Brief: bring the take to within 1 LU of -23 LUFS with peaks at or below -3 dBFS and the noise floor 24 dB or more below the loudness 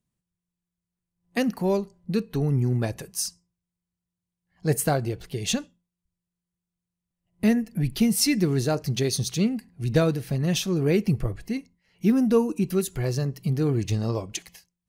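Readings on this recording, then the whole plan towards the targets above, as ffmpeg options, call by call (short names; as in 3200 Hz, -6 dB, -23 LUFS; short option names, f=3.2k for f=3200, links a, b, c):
loudness -25.5 LUFS; peak -9.0 dBFS; loudness target -23.0 LUFS
-> -af "volume=2.5dB"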